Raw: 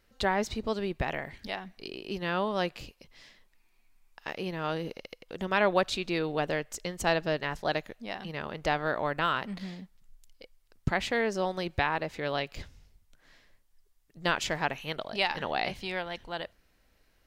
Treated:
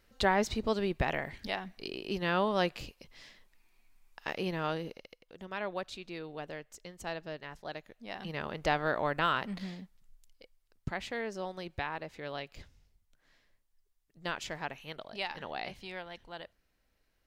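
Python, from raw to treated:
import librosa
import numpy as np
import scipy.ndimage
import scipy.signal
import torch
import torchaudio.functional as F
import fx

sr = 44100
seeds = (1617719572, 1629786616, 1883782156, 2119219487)

y = fx.gain(x, sr, db=fx.line((4.56, 0.5), (5.32, -12.0), (7.83, -12.0), (8.26, -1.0), (9.63, -1.0), (10.88, -8.5)))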